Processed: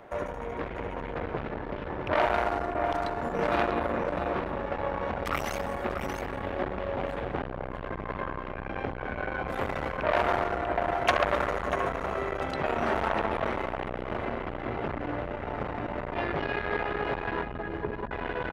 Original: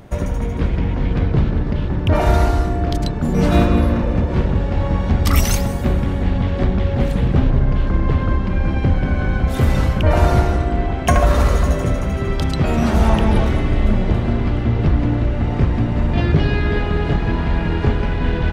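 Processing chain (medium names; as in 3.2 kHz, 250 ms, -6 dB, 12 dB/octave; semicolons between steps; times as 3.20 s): 17.43–18.11 s: spectral gate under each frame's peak -15 dB strong; three-band isolator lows -20 dB, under 390 Hz, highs -16 dB, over 2.5 kHz; delay 643 ms -8.5 dB; transformer saturation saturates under 2.2 kHz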